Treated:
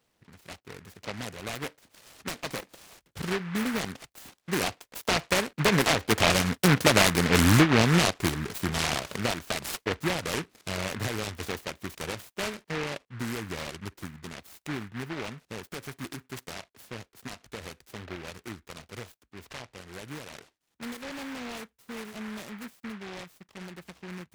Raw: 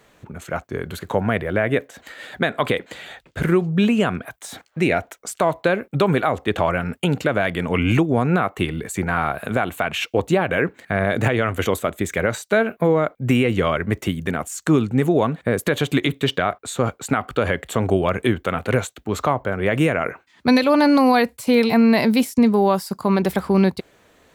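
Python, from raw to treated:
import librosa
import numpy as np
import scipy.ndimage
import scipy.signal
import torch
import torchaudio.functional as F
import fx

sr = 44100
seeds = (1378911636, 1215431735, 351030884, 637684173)

y = fx.doppler_pass(x, sr, speed_mps=21, closest_m=19.0, pass_at_s=6.99)
y = fx.noise_mod_delay(y, sr, seeds[0], noise_hz=1500.0, depth_ms=0.26)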